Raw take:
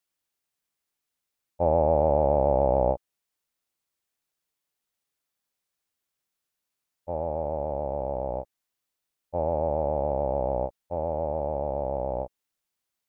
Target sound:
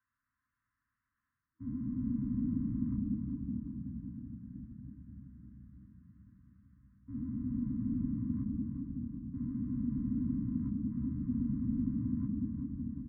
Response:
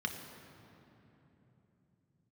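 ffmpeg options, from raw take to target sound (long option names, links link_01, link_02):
-filter_complex "[0:a]highpass=frequency=290:width_type=q:width=0.5412,highpass=frequency=290:width_type=q:width=1.307,lowpass=frequency=2100:width_type=q:width=0.5176,lowpass=frequency=2100:width_type=q:width=0.7071,lowpass=frequency=2100:width_type=q:width=1.932,afreqshift=-330,bandreject=frequency=50:width_type=h:width=6,bandreject=frequency=100:width_type=h:width=6,bandreject=frequency=150:width_type=h:width=6,bandreject=frequency=200:width_type=h:width=6,areverse,acompressor=threshold=-38dB:ratio=10,areverse,aecho=1:1:377|754|1131|1508|1885:0.398|0.171|0.0736|0.0317|0.0136[link_01];[1:a]atrim=start_sample=2205,asetrate=23814,aresample=44100[link_02];[link_01][link_02]afir=irnorm=-1:irlink=0,afftfilt=real='re*(1-between(b*sr/4096,320,960))':imag='im*(1-between(b*sr/4096,320,960))':win_size=4096:overlap=0.75"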